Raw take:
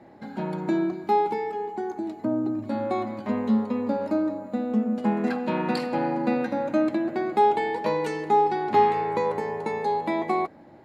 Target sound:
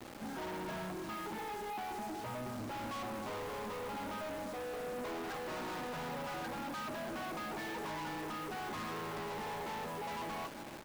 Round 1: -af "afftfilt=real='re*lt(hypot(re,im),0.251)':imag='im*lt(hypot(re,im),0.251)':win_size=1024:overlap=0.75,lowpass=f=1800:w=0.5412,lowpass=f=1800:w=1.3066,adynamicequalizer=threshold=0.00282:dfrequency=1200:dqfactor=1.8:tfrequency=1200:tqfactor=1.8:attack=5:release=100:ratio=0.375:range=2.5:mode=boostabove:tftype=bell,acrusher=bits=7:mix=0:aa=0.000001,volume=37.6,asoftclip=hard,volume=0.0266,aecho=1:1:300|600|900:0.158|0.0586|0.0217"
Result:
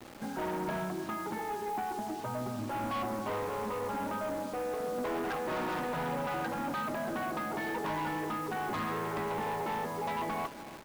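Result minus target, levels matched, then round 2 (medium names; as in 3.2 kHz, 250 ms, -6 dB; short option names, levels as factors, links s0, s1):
overload inside the chain: distortion -5 dB
-af "afftfilt=real='re*lt(hypot(re,im),0.251)':imag='im*lt(hypot(re,im),0.251)':win_size=1024:overlap=0.75,lowpass=f=1800:w=0.5412,lowpass=f=1800:w=1.3066,adynamicequalizer=threshold=0.00282:dfrequency=1200:dqfactor=1.8:tfrequency=1200:tqfactor=1.8:attack=5:release=100:ratio=0.375:range=2.5:mode=boostabove:tftype=bell,acrusher=bits=7:mix=0:aa=0.000001,volume=100,asoftclip=hard,volume=0.01,aecho=1:1:300|600|900:0.158|0.0586|0.0217"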